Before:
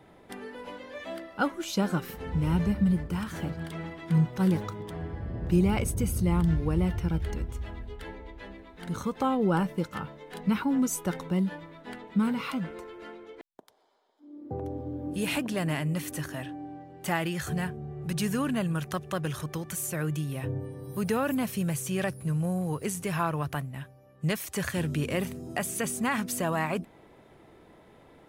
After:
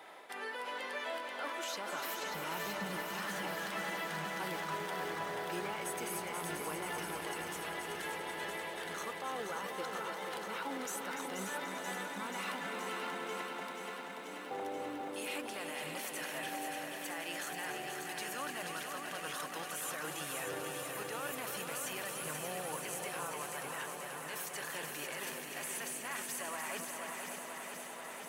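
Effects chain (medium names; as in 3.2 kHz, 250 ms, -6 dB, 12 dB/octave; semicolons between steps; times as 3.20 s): high-pass 770 Hz 12 dB/octave; reverse; compression, threshold -45 dBFS, peak gain reduction 19.5 dB; reverse; peak limiter -40.5 dBFS, peak gain reduction 10 dB; multi-head delay 292 ms, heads first and second, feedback 46%, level -8.5 dB; bit-crushed delay 483 ms, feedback 80%, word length 13-bit, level -6 dB; trim +8 dB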